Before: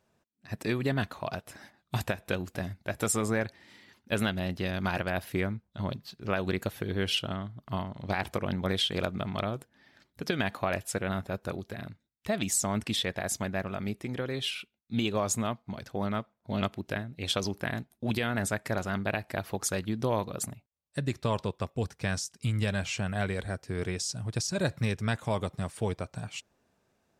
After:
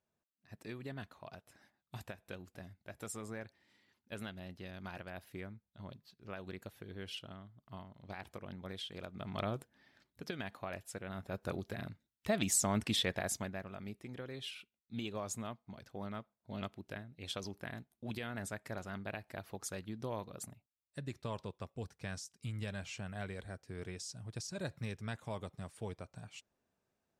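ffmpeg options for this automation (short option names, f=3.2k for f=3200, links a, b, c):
-af "volume=6dB,afade=t=in:st=9.11:d=0.42:silence=0.251189,afade=t=out:st=9.53:d=0.85:silence=0.354813,afade=t=in:st=11.12:d=0.47:silence=0.316228,afade=t=out:st=13.13:d=0.47:silence=0.354813"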